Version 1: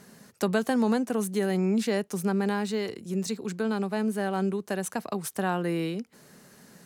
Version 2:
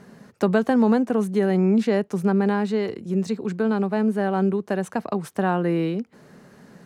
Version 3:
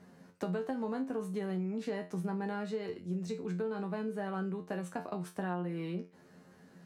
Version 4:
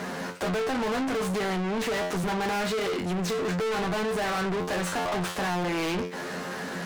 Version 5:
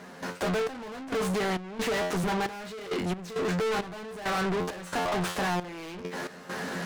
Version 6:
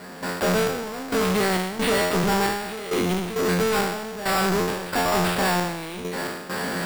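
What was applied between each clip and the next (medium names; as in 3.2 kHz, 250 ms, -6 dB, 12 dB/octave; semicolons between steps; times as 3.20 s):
low-pass 1.5 kHz 6 dB/octave; trim +6.5 dB
feedback comb 89 Hz, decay 0.26 s, harmonics all, mix 90%; compression 10:1, threshold -29 dBFS, peak gain reduction 9.5 dB; trim -2.5 dB
dead-time distortion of 0.11 ms; overdrive pedal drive 39 dB, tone 6 kHz, clips at -21.5 dBFS
trance gate ".xx..xx.xxx..x" 67 bpm -12 dB
spectral sustain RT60 1.06 s; sample-and-hold 7×; trim +4.5 dB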